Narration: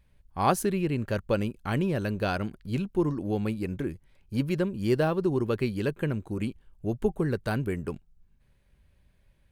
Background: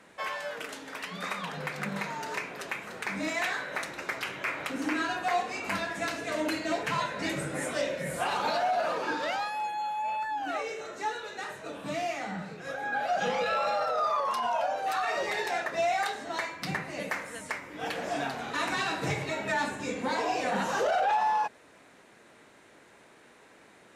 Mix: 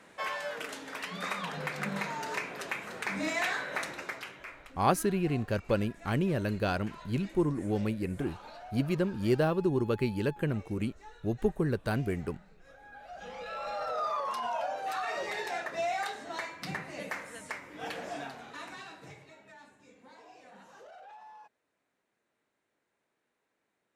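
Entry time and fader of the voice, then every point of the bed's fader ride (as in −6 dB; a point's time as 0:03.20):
4.40 s, −2.0 dB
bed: 0:03.91 −0.5 dB
0:04.74 −19.5 dB
0:13.03 −19.5 dB
0:13.92 −4.5 dB
0:17.94 −4.5 dB
0:19.56 −25 dB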